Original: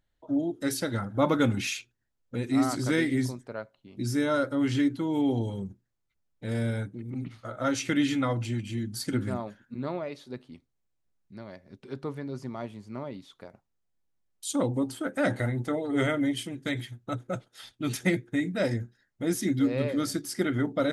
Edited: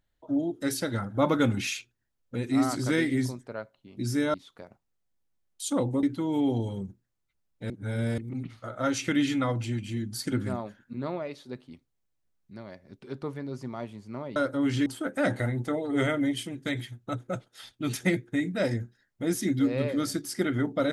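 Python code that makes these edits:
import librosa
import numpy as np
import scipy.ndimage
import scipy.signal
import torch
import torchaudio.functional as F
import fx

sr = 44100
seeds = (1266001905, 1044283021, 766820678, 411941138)

y = fx.edit(x, sr, fx.swap(start_s=4.34, length_s=0.5, other_s=13.17, other_length_s=1.69),
    fx.reverse_span(start_s=6.51, length_s=0.48), tone=tone)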